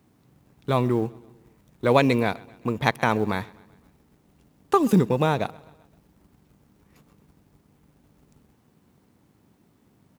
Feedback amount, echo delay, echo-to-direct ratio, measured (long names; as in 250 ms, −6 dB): 54%, 129 ms, −22.0 dB